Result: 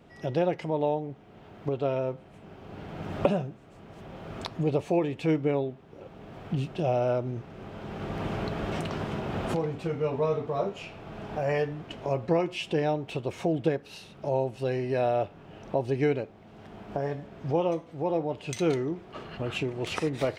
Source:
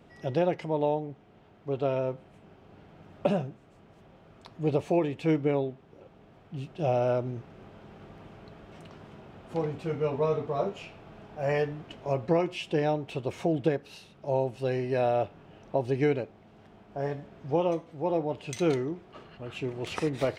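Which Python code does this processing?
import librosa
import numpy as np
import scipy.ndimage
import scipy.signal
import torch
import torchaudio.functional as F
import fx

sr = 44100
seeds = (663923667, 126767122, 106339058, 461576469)

y = fx.recorder_agc(x, sr, target_db=-22.0, rise_db_per_s=16.0, max_gain_db=30)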